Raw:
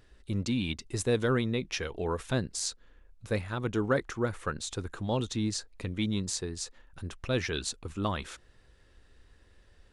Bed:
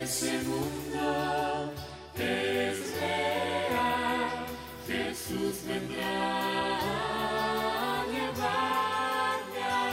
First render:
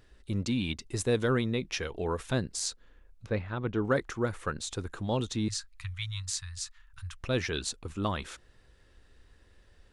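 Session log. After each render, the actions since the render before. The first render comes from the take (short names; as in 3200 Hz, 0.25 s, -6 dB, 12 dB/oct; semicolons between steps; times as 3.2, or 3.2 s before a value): 3.26–3.85 air absorption 230 m; 5.48–7.21 inverse Chebyshev band-stop 220–590 Hz, stop band 50 dB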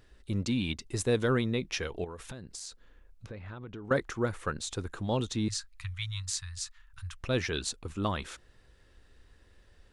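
2.04–3.91 compressor 16:1, threshold -38 dBFS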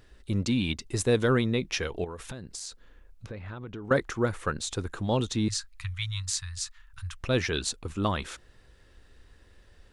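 gain +3.5 dB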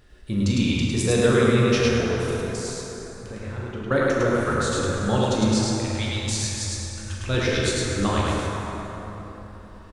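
loudspeakers at several distances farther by 14 m -11 dB, 36 m -2 dB; plate-style reverb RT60 4.1 s, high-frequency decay 0.5×, DRR -3 dB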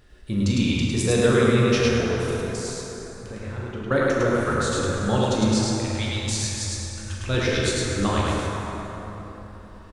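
nothing audible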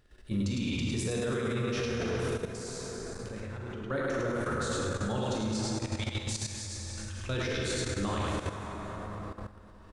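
level quantiser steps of 13 dB; limiter -23.5 dBFS, peak gain reduction 9.5 dB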